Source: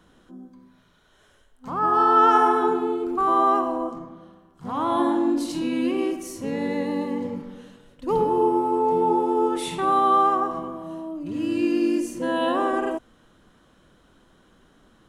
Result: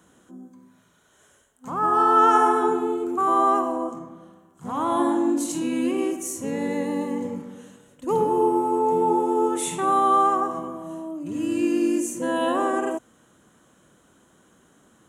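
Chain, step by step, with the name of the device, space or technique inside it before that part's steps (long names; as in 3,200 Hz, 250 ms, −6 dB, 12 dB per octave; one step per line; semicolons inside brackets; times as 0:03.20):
budget condenser microphone (high-pass filter 94 Hz; high shelf with overshoot 5,800 Hz +6 dB, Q 3)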